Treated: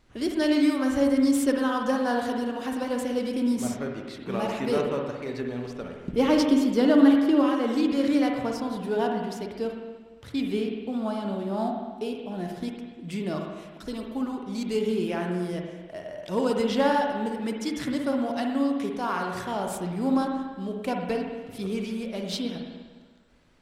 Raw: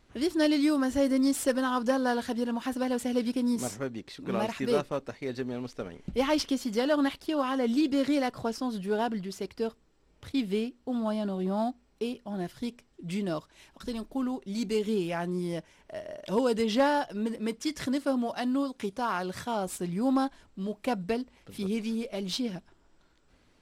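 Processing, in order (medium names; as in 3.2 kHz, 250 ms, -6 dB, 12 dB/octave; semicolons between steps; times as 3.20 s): 6.00–7.43 s: peaking EQ 310 Hz +8 dB 1.2 oct; spring tank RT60 1.4 s, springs 50/57 ms, chirp 75 ms, DRR 1.5 dB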